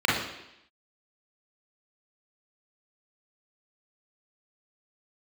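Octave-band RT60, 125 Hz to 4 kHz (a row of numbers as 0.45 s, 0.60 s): 0.70 s, 0.85 s, 0.80 s, 0.85 s, 0.90 s, 0.90 s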